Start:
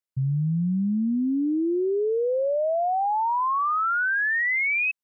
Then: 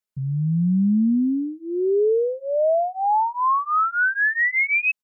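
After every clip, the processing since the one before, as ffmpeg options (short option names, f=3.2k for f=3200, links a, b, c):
-af "aecho=1:1:4.7:0.97"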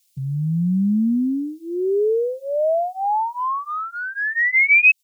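-filter_complex "[0:a]acrossover=split=100|990[a][b][c];[c]acompressor=threshold=-29dB:ratio=10[d];[a][b][d]amix=inputs=3:normalize=0,aexciter=amount=16:drive=2.7:freq=2.2k"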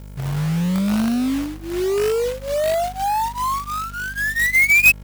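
-af "aeval=exprs='val(0)+0.0178*(sin(2*PI*50*n/s)+sin(2*PI*2*50*n/s)/2+sin(2*PI*3*50*n/s)/3+sin(2*PI*4*50*n/s)/4+sin(2*PI*5*50*n/s)/5)':c=same,acrusher=bits=2:mode=log:mix=0:aa=0.000001"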